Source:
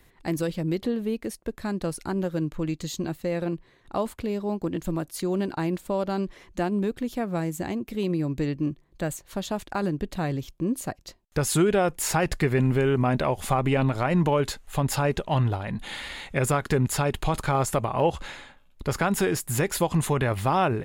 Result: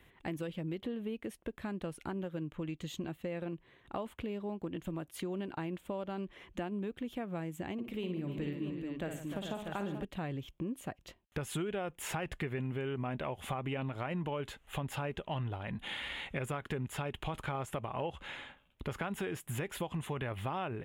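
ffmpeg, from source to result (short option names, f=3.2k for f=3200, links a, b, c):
-filter_complex "[0:a]asettb=1/sr,asplit=3[a][b][c];[a]atrim=end=7.734[d];[b]atrim=start=7.73:end=10.05,asetpts=PTS-STARTPTS,afade=t=in:d=0.004:c=qsin,afade=t=out:st=2.316:d=0.004:c=qsin,aecho=1:1:55|112|152|298|433|641:0.447|0.15|0.15|0.266|0.376|0.398,atrim=end_sample=102312[e];[c]atrim=start=10.046[f];[d][e]acrossfade=d=0.004:c1=hsin:c2=qsin[g];[g][f]acrossfade=d=0.004:c1=qsin:c2=hsin,highpass=41,highshelf=f=3.8k:t=q:w=3:g=-6,acompressor=threshold=-34dB:ratio=3,volume=-3.5dB"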